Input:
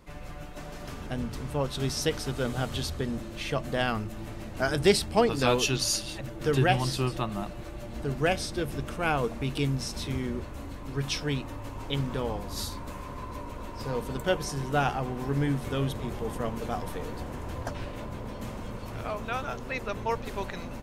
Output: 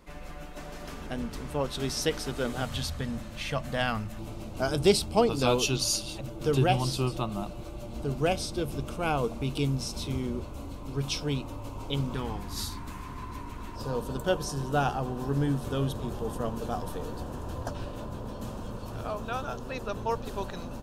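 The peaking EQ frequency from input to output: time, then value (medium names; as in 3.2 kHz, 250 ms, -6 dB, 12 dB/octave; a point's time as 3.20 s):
peaking EQ -14 dB 0.42 oct
110 Hz
from 2.62 s 370 Hz
from 4.19 s 1.8 kHz
from 12.15 s 550 Hz
from 13.76 s 2.1 kHz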